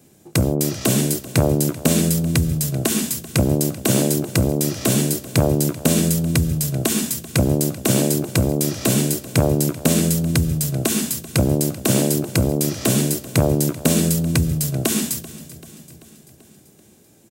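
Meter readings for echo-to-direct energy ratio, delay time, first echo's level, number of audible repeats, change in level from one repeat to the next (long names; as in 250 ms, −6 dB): −16.0 dB, 387 ms, −18.0 dB, 4, −4.5 dB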